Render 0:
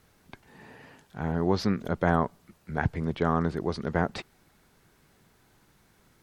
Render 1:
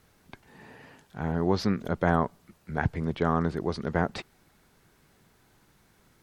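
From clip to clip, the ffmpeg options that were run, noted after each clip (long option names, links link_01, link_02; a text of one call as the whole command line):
ffmpeg -i in.wav -af anull out.wav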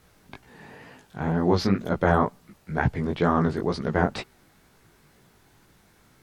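ffmpeg -i in.wav -af "flanger=delay=15.5:depth=6.5:speed=2.1,volume=7dB" out.wav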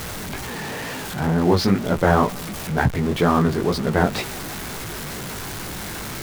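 ffmpeg -i in.wav -af "aeval=exprs='val(0)+0.5*0.0376*sgn(val(0))':channel_layout=same,volume=3dB" out.wav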